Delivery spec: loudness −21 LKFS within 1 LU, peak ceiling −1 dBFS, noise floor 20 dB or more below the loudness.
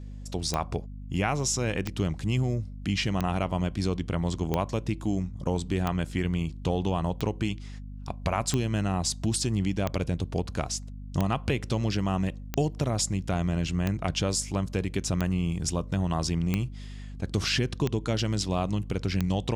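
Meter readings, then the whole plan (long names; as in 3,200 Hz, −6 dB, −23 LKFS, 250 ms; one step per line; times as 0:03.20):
number of clicks 15; mains hum 50 Hz; hum harmonics up to 250 Hz; level of the hum −38 dBFS; integrated loudness −29.0 LKFS; sample peak −11.0 dBFS; target loudness −21.0 LKFS
→ click removal
mains-hum notches 50/100/150/200/250 Hz
level +8 dB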